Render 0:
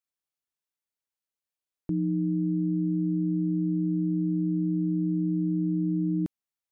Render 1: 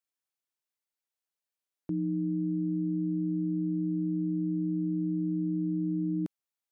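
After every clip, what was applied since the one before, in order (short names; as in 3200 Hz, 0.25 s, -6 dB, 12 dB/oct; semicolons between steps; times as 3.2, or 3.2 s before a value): HPF 210 Hz 6 dB/oct; gain -1 dB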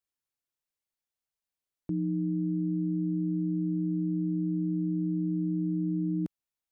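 low shelf 130 Hz +11 dB; gain -2 dB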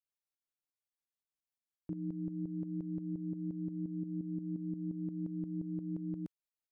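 tremolo saw up 5.7 Hz, depth 70%; gain -6 dB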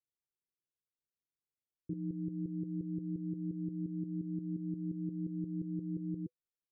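rippled Chebyshev low-pass 510 Hz, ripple 6 dB; gain +3.5 dB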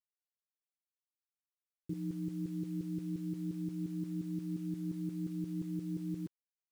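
bit-crush 10-bit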